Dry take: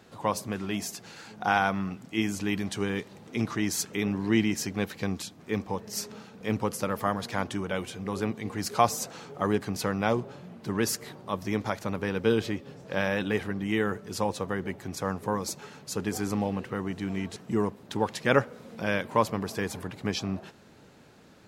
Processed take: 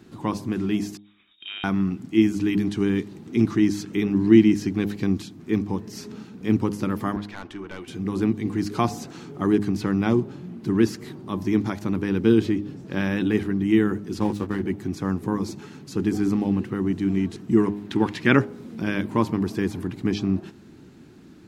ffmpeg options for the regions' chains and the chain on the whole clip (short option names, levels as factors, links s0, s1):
-filter_complex "[0:a]asettb=1/sr,asplit=3[s0][s1][s2];[s0]atrim=end=0.974[s3];[s1]atrim=start=0.97:end=1.64,asetpts=PTS-STARTPTS,afade=t=in:d=0.004:c=qsin,afade=t=out:st=0.666:d=0.004:c=qsin,acompressor=threshold=0.01:ratio=2:attack=3.2:release=140:knee=1:detection=peak,lowpass=f=3300:t=q:w=0.5098,lowpass=f=3300:t=q:w=0.6013,lowpass=f=3300:t=q:w=0.9,lowpass=f=3300:t=q:w=2.563,afreqshift=-3900,agate=range=0.0224:threshold=0.0126:ratio=3:release=100:detection=peak[s4];[s2]atrim=start=1.636[s5];[s3][s4]acrossfade=d=0.004:c1=hsin:c2=qsin[s6];[s6][s5]acrossfade=d=0.004:c1=qsin:c2=hsin,asettb=1/sr,asplit=3[s7][s8][s9];[s7]atrim=end=7.164[s10];[s8]atrim=start=7.16:end=7.88,asetpts=PTS-STARTPTS,afade=t=in:d=0.004:c=qsin,afade=t=out:st=0.716:d=0.004:c=qsin,acrossover=split=480 4000:gain=0.178 1 0.178[s11][s12][s13];[s11][s12][s13]amix=inputs=3:normalize=0,aeval=exprs='(tanh(28.2*val(0)+0.4)-tanh(0.4))/28.2':c=same[s14];[s9]atrim=start=7.876[s15];[s10][s14]acrossfade=d=0.004:c1=hsin:c2=qsin[s16];[s16][s15]acrossfade=d=0.004:c1=qsin:c2=hsin,asettb=1/sr,asplit=3[s17][s18][s19];[s17]atrim=end=14.194[s20];[s18]atrim=start=14.19:end=14.63,asetpts=PTS-STARTPTS,afade=t=in:d=0.004:c=qsin,afade=t=out:st=0.436:d=0.004:c=qsin,asplit=2[s21][s22];[s22]adelay=19,volume=0.531[s23];[s21][s23]amix=inputs=2:normalize=0,atrim=end_sample=19404,aeval=exprs='sgn(val(0))*max(abs(val(0))-0.00891,0)':c=same[s24];[s19]atrim=start=14.626[s25];[s20][s24]acrossfade=d=0.004:c1=hsin:c2=qsin[s26];[s26][s25]acrossfade=d=0.004:c1=qsin:c2=hsin,asettb=1/sr,asplit=3[s27][s28][s29];[s27]atrim=end=17.574[s30];[s28]atrim=start=17.57:end=18.37,asetpts=PTS-STARTPTS,afade=t=in:d=0.004:c=qsin,afade=t=out:st=0.796:d=0.004:c=qsin,equalizer=f=2100:w=0.74:g=7.5,bandreject=f=50:t=h:w=6,bandreject=f=100:t=h:w=6,bandreject=f=150:t=h:w=6[s31];[s29]atrim=start=18.366[s32];[s30][s31]acrossfade=d=0.004:c1=hsin:c2=qsin[s33];[s33][s32]acrossfade=d=0.004:c1=qsin:c2=hsin,bandreject=f=102.4:t=h:w=4,bandreject=f=204.8:t=h:w=4,bandreject=f=307.2:t=h:w=4,bandreject=f=409.6:t=h:w=4,bandreject=f=512:t=h:w=4,bandreject=f=614.4:t=h:w=4,bandreject=f=716.8:t=h:w=4,bandreject=f=819.2:t=h:w=4,bandreject=f=921.6:t=h:w=4,bandreject=f=1024:t=h:w=4,acrossover=split=4700[s34][s35];[s35]acompressor=threshold=0.00562:ratio=4:attack=1:release=60[s36];[s34][s36]amix=inputs=2:normalize=0,lowshelf=f=420:t=q:w=3:g=7"